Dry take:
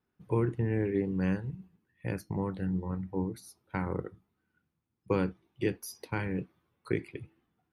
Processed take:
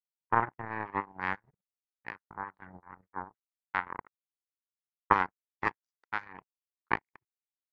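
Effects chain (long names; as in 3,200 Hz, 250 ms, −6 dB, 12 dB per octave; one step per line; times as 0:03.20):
linear-phase brick-wall low-pass 7,500 Hz
power curve on the samples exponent 3
flat-topped bell 1,300 Hz +15.5 dB
level +1.5 dB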